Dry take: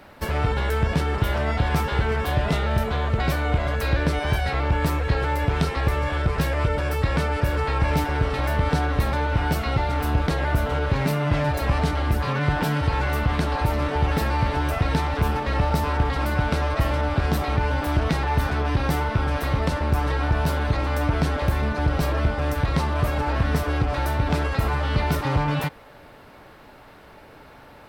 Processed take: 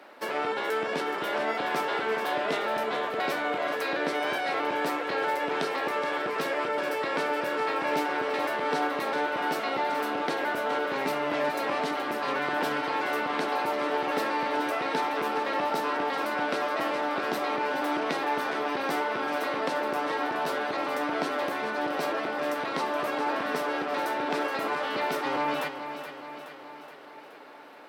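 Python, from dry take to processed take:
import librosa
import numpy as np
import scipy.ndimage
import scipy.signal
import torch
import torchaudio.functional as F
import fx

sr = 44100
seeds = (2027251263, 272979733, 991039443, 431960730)

p1 = scipy.signal.sosfilt(scipy.signal.butter(4, 290.0, 'highpass', fs=sr, output='sos'), x)
p2 = fx.high_shelf(p1, sr, hz=7000.0, db=-7.5)
p3 = p2 + fx.echo_feedback(p2, sr, ms=423, feedback_pct=58, wet_db=-10, dry=0)
y = p3 * 10.0 ** (-1.5 / 20.0)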